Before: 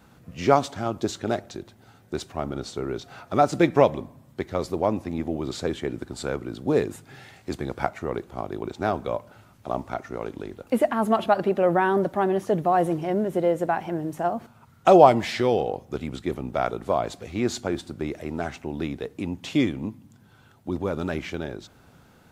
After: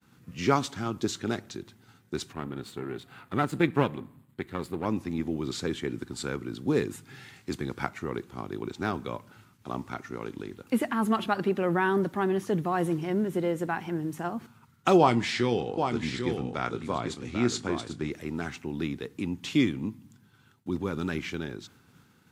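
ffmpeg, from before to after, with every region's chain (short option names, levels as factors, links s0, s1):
-filter_complex "[0:a]asettb=1/sr,asplit=3[s0][s1][s2];[s0]atrim=end=2.334[s3];[s1]atrim=start=2.33:end=4.86,asetpts=PTS-STARTPTS,afade=t=in:d=0.004:c=qsin,afade=t=out:st=2.526:d=0.004:c=qsin,aeval=exprs='if(lt(val(0),0),0.447*val(0),val(0))':c=same,equalizer=f=5700:w=2.2:g=-13.5[s4];[s2]atrim=start=4.856[s5];[s3][s4]acrossfade=d=0.004:c1=hsin:c2=qsin[s6];[s6][s5]acrossfade=d=0.004:c1=qsin:c2=hsin,asettb=1/sr,asplit=3[s7][s8][s9];[s7]atrim=end=14.984[s10];[s8]atrim=start=14.98:end=18.12,asetpts=PTS-STARTPTS,afade=t=in:d=0.004:c=qsin,afade=t=out:st=3.136:d=0.004:c=qsin,lowpass=f=9800:w=0.5412,lowpass=f=9800:w=1.3066,asplit=2[s11][s12];[s12]adelay=25,volume=0.251[s13];[s11][s13]amix=inputs=2:normalize=0,atrim=end_sample=138474,aecho=1:1:792:0.447,atrim=end_sample=138474[s14];[s9]atrim=start=18.116[s15];[s10][s14]acrossfade=d=0.004:c1=hsin:c2=qsin[s16];[s16][s15]acrossfade=d=0.004:c1=qsin:c2=hsin,highpass=100,equalizer=f=630:t=o:w=0.78:g=-14,agate=range=0.0224:threshold=0.00251:ratio=3:detection=peak"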